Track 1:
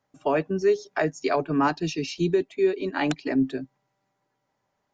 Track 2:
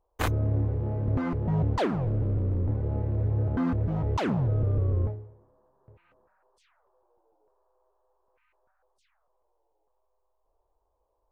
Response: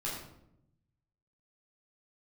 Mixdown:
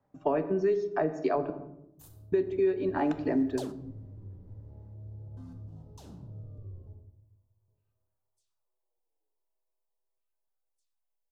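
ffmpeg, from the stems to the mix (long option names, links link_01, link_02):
-filter_complex "[0:a]lowpass=3400,volume=3dB,asplit=3[link_01][link_02][link_03];[link_01]atrim=end=1.5,asetpts=PTS-STARTPTS,afade=type=out:start_time=1.496:duration=0.004:curve=hsin[link_04];[link_02]atrim=start=1.5:end=2.32,asetpts=PTS-STARTPTS,volume=0[link_05];[link_03]atrim=start=2.32,asetpts=PTS-STARTPTS,afade=type=in:duration=0.004:curve=hsin[link_06];[link_04][link_05][link_06]concat=n=3:v=0:a=1,asplit=3[link_07][link_08][link_09];[link_08]volume=-12dB[link_10];[1:a]dynaudnorm=framelen=210:gausssize=13:maxgain=8.5dB,aexciter=amount=9:drive=6.4:freq=3100,adelay=1800,volume=-18dB,asplit=2[link_11][link_12];[link_12]volume=-19.5dB[link_13];[link_09]apad=whole_len=578459[link_14];[link_11][link_14]sidechaingate=range=-18dB:threshold=-39dB:ratio=16:detection=peak[link_15];[2:a]atrim=start_sample=2205[link_16];[link_10][link_13]amix=inputs=2:normalize=0[link_17];[link_17][link_16]afir=irnorm=-1:irlink=0[link_18];[link_07][link_15][link_18]amix=inputs=3:normalize=0,equalizer=frequency=3000:width_type=o:width=2.6:gain=-13.5,acrossover=split=300|1300[link_19][link_20][link_21];[link_19]acompressor=threshold=-38dB:ratio=4[link_22];[link_20]acompressor=threshold=-26dB:ratio=4[link_23];[link_21]acompressor=threshold=-43dB:ratio=4[link_24];[link_22][link_23][link_24]amix=inputs=3:normalize=0"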